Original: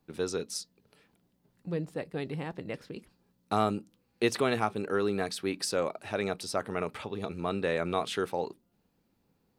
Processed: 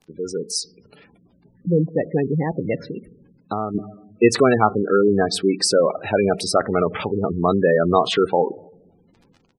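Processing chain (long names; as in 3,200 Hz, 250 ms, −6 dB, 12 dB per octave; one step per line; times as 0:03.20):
automatic gain control gain up to 12.5 dB
surface crackle 72 per second −37 dBFS
on a send at −18.5 dB: convolution reverb RT60 0.95 s, pre-delay 3 ms
0:02.87–0:03.75: on the sum: downward compressor 2 to 1, threshold −32 dBFS, peak gain reduction 12 dB
gate on every frequency bin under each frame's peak −15 dB strong
downsampling to 32,000 Hz
level +2.5 dB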